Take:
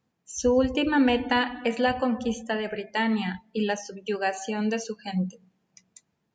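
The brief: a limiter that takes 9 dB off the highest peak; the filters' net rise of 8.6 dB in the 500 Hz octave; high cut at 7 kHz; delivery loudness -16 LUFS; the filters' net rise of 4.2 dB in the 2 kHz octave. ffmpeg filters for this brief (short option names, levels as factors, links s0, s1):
-af "lowpass=7000,equalizer=f=500:t=o:g=9,equalizer=f=2000:t=o:g=4.5,volume=2.82,alimiter=limit=0.562:level=0:latency=1"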